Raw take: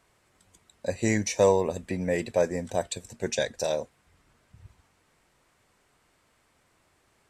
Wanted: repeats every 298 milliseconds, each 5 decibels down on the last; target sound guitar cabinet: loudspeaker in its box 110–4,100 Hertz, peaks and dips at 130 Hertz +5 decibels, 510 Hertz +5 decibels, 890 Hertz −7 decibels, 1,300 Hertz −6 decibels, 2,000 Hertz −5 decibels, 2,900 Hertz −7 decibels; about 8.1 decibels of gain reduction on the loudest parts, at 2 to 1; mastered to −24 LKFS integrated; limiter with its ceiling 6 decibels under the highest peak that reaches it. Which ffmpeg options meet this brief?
ffmpeg -i in.wav -af "acompressor=threshold=-30dB:ratio=2,alimiter=limit=-21dB:level=0:latency=1,highpass=110,equalizer=frequency=130:width_type=q:width=4:gain=5,equalizer=frequency=510:width_type=q:width=4:gain=5,equalizer=frequency=890:width_type=q:width=4:gain=-7,equalizer=frequency=1300:width_type=q:width=4:gain=-6,equalizer=frequency=2000:width_type=q:width=4:gain=-5,equalizer=frequency=2900:width_type=q:width=4:gain=-7,lowpass=frequency=4100:width=0.5412,lowpass=frequency=4100:width=1.3066,aecho=1:1:298|596|894|1192|1490|1788|2086:0.562|0.315|0.176|0.0988|0.0553|0.031|0.0173,volume=9dB" out.wav

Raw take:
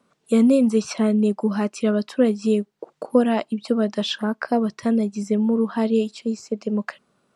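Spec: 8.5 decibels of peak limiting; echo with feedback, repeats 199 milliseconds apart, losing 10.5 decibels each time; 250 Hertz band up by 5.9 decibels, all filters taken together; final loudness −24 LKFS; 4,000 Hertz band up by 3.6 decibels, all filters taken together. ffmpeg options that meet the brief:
ffmpeg -i in.wav -af "equalizer=frequency=250:width_type=o:gain=6.5,equalizer=frequency=4000:width_type=o:gain=4.5,alimiter=limit=-10dB:level=0:latency=1,aecho=1:1:199|398|597:0.299|0.0896|0.0269,volume=-5dB" out.wav

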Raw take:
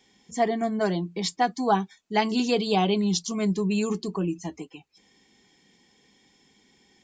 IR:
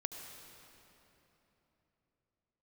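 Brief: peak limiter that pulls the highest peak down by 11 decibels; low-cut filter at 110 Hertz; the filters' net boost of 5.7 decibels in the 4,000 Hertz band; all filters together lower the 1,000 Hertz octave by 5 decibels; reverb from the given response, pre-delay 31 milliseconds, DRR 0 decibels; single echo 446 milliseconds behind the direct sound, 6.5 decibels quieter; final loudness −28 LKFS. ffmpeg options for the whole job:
-filter_complex "[0:a]highpass=110,equalizer=frequency=1000:width_type=o:gain=-8,equalizer=frequency=4000:width_type=o:gain=7.5,alimiter=limit=-19.5dB:level=0:latency=1,aecho=1:1:446:0.473,asplit=2[link_01][link_02];[1:a]atrim=start_sample=2205,adelay=31[link_03];[link_02][link_03]afir=irnorm=-1:irlink=0,volume=0.5dB[link_04];[link_01][link_04]amix=inputs=2:normalize=0,volume=-2dB"

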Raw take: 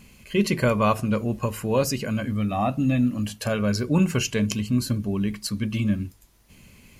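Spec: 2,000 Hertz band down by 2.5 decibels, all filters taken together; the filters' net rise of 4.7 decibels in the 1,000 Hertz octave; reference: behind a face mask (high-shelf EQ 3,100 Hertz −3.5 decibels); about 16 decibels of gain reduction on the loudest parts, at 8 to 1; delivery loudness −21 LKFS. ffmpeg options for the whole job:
ffmpeg -i in.wav -af "equalizer=frequency=1000:width_type=o:gain=7.5,equalizer=frequency=2000:width_type=o:gain=-5,acompressor=threshold=-30dB:ratio=8,highshelf=frequency=3100:gain=-3.5,volume=13.5dB" out.wav

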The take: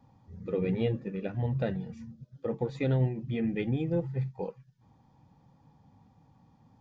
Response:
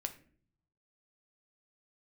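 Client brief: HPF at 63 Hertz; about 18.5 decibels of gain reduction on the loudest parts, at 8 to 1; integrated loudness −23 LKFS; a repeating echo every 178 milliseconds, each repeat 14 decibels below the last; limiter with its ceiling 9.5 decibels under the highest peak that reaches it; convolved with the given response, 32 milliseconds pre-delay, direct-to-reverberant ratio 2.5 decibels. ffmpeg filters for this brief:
-filter_complex "[0:a]highpass=63,acompressor=threshold=-43dB:ratio=8,alimiter=level_in=17.5dB:limit=-24dB:level=0:latency=1,volume=-17.5dB,aecho=1:1:178|356:0.2|0.0399,asplit=2[link_01][link_02];[1:a]atrim=start_sample=2205,adelay=32[link_03];[link_02][link_03]afir=irnorm=-1:irlink=0,volume=-1.5dB[link_04];[link_01][link_04]amix=inputs=2:normalize=0,volume=26dB"

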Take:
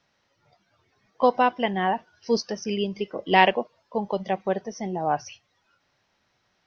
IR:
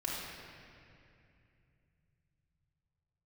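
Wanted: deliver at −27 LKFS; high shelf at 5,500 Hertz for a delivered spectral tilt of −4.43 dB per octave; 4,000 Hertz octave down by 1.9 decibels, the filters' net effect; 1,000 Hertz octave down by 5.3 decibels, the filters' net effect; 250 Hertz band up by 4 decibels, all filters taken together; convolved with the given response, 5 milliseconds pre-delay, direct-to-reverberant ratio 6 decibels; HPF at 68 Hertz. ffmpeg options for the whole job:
-filter_complex "[0:a]highpass=68,equalizer=frequency=250:width_type=o:gain=5.5,equalizer=frequency=1000:width_type=o:gain=-8,equalizer=frequency=4000:width_type=o:gain=-4.5,highshelf=frequency=5500:gain=5.5,asplit=2[link_01][link_02];[1:a]atrim=start_sample=2205,adelay=5[link_03];[link_02][link_03]afir=irnorm=-1:irlink=0,volume=-10dB[link_04];[link_01][link_04]amix=inputs=2:normalize=0,volume=-2.5dB"

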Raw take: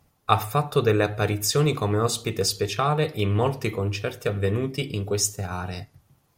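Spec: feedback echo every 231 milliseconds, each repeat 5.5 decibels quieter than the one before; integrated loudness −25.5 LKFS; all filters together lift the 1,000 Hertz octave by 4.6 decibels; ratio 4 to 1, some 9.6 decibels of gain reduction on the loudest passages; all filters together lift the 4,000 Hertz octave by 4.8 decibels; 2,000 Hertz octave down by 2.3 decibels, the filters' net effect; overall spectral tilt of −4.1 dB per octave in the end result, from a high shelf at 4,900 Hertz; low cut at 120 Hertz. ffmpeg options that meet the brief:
ffmpeg -i in.wav -af "highpass=120,equalizer=frequency=1000:width_type=o:gain=8,equalizer=frequency=2000:width_type=o:gain=-8.5,equalizer=frequency=4000:width_type=o:gain=3.5,highshelf=frequency=4900:gain=7.5,acompressor=threshold=-22dB:ratio=4,aecho=1:1:231|462|693|924|1155|1386|1617:0.531|0.281|0.149|0.079|0.0419|0.0222|0.0118,volume=0.5dB" out.wav

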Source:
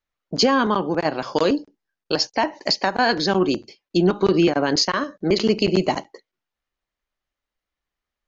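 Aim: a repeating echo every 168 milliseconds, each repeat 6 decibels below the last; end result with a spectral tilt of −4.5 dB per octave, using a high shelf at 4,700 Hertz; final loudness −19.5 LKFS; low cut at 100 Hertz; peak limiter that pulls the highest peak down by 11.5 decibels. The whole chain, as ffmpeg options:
ffmpeg -i in.wav -af "highpass=100,highshelf=frequency=4700:gain=5.5,alimiter=limit=-15dB:level=0:latency=1,aecho=1:1:168|336|504|672|840|1008:0.501|0.251|0.125|0.0626|0.0313|0.0157,volume=5dB" out.wav

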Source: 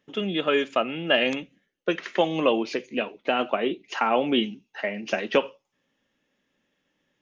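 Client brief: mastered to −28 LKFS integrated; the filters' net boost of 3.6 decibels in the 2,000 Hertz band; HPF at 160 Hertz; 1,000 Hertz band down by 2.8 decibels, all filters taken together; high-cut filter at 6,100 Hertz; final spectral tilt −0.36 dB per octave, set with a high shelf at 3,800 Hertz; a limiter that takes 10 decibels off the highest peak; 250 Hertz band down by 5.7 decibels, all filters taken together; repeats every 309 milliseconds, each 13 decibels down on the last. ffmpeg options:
ffmpeg -i in.wav -af "highpass=160,lowpass=6100,equalizer=frequency=250:width_type=o:gain=-6.5,equalizer=frequency=1000:width_type=o:gain=-5.5,equalizer=frequency=2000:width_type=o:gain=3.5,highshelf=frequency=3800:gain=9,alimiter=limit=-15dB:level=0:latency=1,aecho=1:1:309|618|927:0.224|0.0493|0.0108" out.wav

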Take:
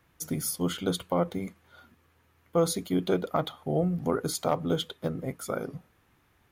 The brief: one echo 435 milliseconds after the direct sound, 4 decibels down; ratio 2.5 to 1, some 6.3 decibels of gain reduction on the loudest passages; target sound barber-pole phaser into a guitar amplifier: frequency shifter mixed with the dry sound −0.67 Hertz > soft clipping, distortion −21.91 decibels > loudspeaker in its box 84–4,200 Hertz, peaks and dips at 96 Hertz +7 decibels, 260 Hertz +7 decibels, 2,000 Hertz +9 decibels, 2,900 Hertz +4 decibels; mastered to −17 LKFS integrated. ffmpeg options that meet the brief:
ffmpeg -i in.wav -filter_complex "[0:a]acompressor=threshold=-30dB:ratio=2.5,aecho=1:1:435:0.631,asplit=2[link_01][link_02];[link_02]afreqshift=-0.67[link_03];[link_01][link_03]amix=inputs=2:normalize=1,asoftclip=threshold=-23.5dB,highpass=84,equalizer=frequency=96:width_type=q:width=4:gain=7,equalizer=frequency=260:width_type=q:width=4:gain=7,equalizer=frequency=2000:width_type=q:width=4:gain=9,equalizer=frequency=2900:width_type=q:width=4:gain=4,lowpass=frequency=4200:width=0.5412,lowpass=frequency=4200:width=1.3066,volume=19dB" out.wav

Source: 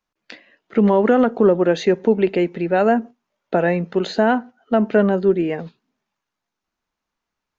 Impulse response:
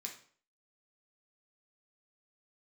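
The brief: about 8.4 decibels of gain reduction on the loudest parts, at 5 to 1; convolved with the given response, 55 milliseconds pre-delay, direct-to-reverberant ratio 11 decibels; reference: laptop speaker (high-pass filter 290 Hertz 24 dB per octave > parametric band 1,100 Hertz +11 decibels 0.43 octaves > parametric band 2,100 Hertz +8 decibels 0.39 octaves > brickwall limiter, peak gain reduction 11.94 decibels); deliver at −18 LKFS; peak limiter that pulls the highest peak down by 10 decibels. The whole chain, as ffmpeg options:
-filter_complex "[0:a]acompressor=threshold=-20dB:ratio=5,alimiter=limit=-18dB:level=0:latency=1,asplit=2[link_01][link_02];[1:a]atrim=start_sample=2205,adelay=55[link_03];[link_02][link_03]afir=irnorm=-1:irlink=0,volume=-8dB[link_04];[link_01][link_04]amix=inputs=2:normalize=0,highpass=frequency=290:width=0.5412,highpass=frequency=290:width=1.3066,equalizer=frequency=1100:width_type=o:width=0.43:gain=11,equalizer=frequency=2100:width_type=o:width=0.39:gain=8,volume=18dB,alimiter=limit=-9dB:level=0:latency=1"

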